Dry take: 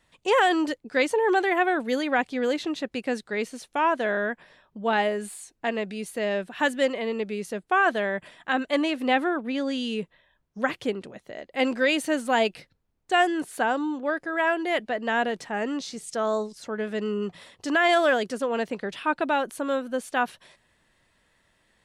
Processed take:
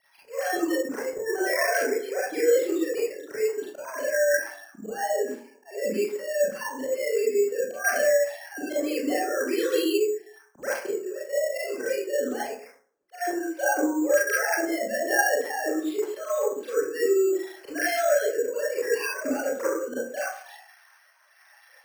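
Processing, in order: formants replaced by sine waves; dynamic bell 1.1 kHz, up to -4 dB, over -34 dBFS, Q 0.8; gain riding within 4 dB 0.5 s; slow attack 649 ms; compression 6:1, threshold -38 dBFS, peak gain reduction 16 dB; rotary cabinet horn 1.1 Hz; reverberation RT60 0.50 s, pre-delay 27 ms, DRR -9.5 dB; careless resampling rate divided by 6×, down none, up hold; trim +7.5 dB

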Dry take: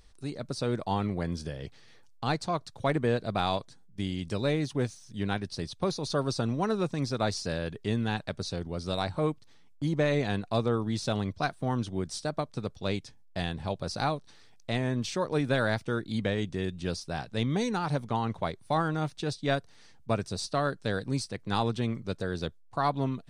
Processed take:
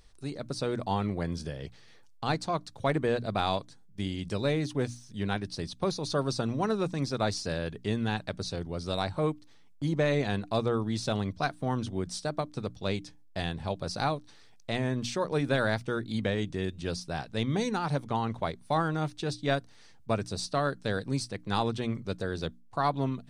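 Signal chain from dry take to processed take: hum notches 60/120/180/240/300 Hz

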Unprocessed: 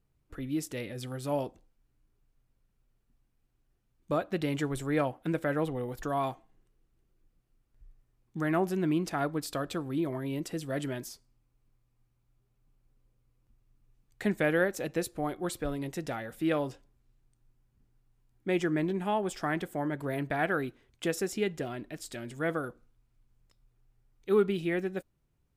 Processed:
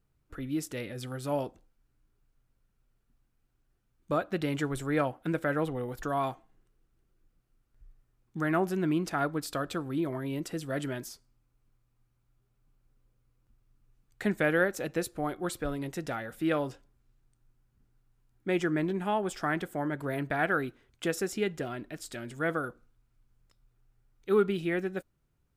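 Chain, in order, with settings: peaking EQ 1.4 kHz +4.5 dB 0.46 oct

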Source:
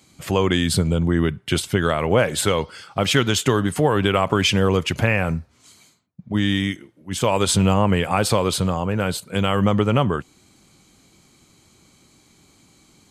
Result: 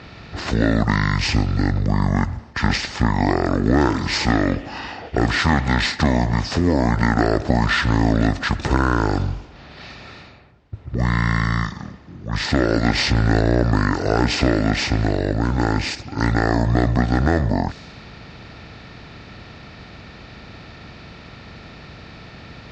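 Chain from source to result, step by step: spectral levelling over time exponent 0.6; speed mistake 78 rpm record played at 45 rpm; level-controlled noise filter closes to 2.9 kHz, open at -15.5 dBFS; trim -2.5 dB

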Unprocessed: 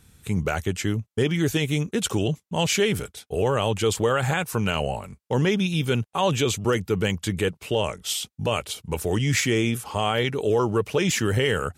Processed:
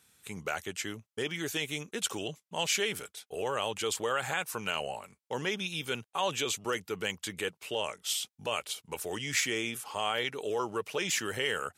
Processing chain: high-pass 830 Hz 6 dB/octave; trim -4.5 dB

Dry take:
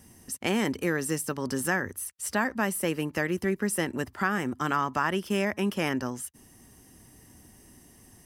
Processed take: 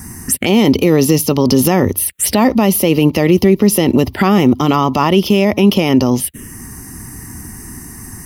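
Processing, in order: touch-sensitive phaser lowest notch 520 Hz, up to 1.6 kHz, full sweep at -29.5 dBFS; loudness maximiser +25.5 dB; trim -1 dB

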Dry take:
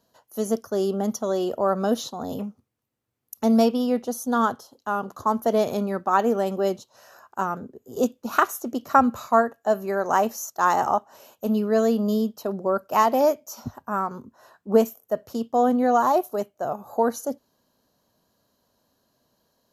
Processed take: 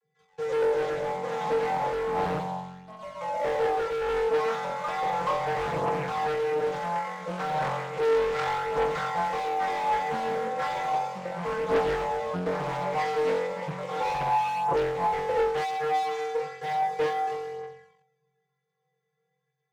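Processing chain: dead-time distortion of 0.14 ms; peaking EQ 1.8 kHz +10.5 dB 0.5 oct; compression 12:1, threshold -25 dBFS, peak gain reduction 16.5 dB; vocoder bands 32, square 153 Hz; ever faster or slower copies 149 ms, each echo +2 st, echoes 3, each echo -6 dB; on a send: flutter echo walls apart 3.8 m, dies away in 1.4 s; on the sum: waveshaping leveller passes 2; band-stop 740 Hz, Q 12; hard clipper -17 dBFS, distortion -15 dB; phaser 0.34 Hz, delay 4.7 ms, feedback 45%; loudspeaker Doppler distortion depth 0.47 ms; trim -7.5 dB

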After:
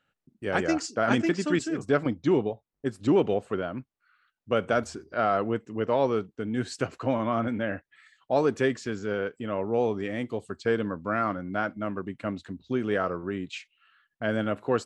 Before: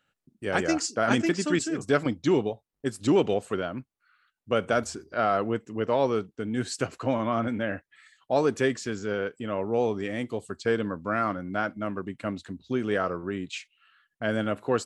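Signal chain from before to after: low-pass 3.7 kHz 6 dB/octave, from 1.88 s 2 kHz, from 3.68 s 4 kHz

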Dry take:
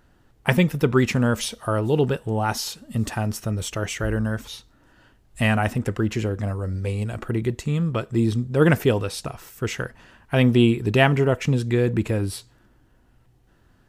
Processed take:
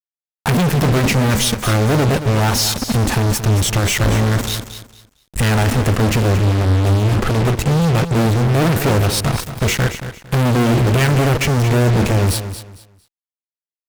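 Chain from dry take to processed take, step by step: bass shelf 300 Hz +10.5 dB; band-stop 610 Hz, Q 12; in parallel at -2.5 dB: compression, threshold -28 dBFS, peak gain reduction 21 dB; on the sum: flange 1.5 Hz, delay 7.1 ms, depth 2.7 ms, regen -75%; fuzz box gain 40 dB, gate -36 dBFS; on a send: feedback delay 227 ms, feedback 25%, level -11 dB

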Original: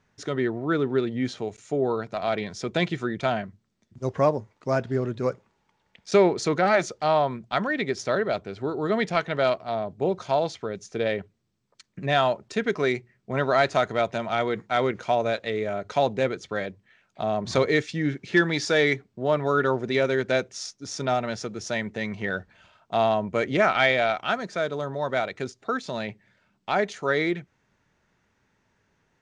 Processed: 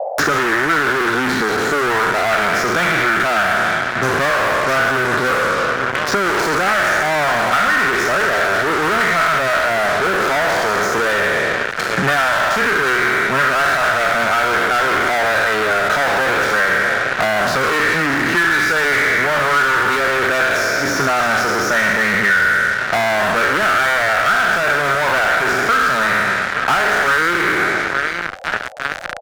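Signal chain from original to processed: spectral sustain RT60 1.48 s; on a send: feedback delay 867 ms, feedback 58%, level -23 dB; on the sum: fuzz box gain 37 dB, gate -42 dBFS; reverse; upward compressor, threshold -32 dBFS; reverse; peaking EQ 1.5 kHz +15 dB 1 oct; band noise 510–790 Hz -45 dBFS; three bands compressed up and down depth 100%; trim -8 dB

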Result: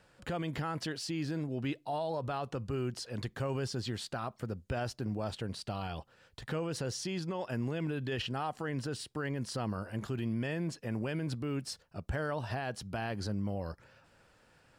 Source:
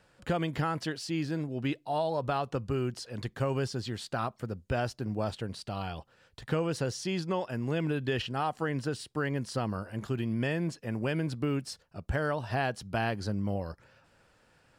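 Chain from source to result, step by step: peak limiter -27 dBFS, peak gain reduction 9 dB

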